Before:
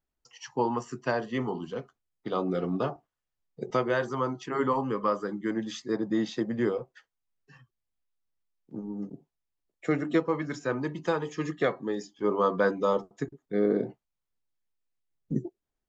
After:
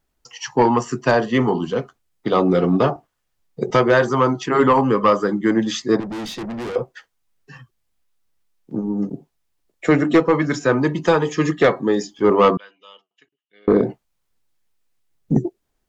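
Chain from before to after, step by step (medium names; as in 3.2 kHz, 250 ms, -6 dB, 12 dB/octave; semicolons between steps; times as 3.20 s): 6.00–6.76 s: valve stage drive 40 dB, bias 0.4; 12.57–13.68 s: band-pass filter 2.9 kHz, Q 17; sine folder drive 4 dB, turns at -12.5 dBFS; trim +5.5 dB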